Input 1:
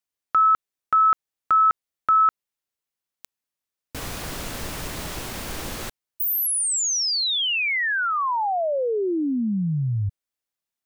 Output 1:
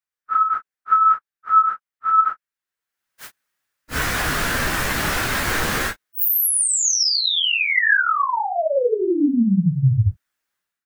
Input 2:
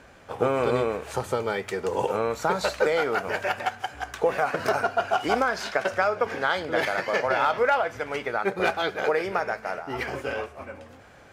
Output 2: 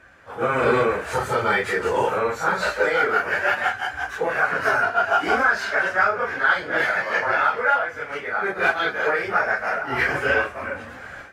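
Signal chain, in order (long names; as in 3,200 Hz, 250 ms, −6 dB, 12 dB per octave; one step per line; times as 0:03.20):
random phases in long frames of 100 ms
parametric band 1,600 Hz +11 dB 0.94 octaves
automatic gain control gain up to 15 dB
level −6 dB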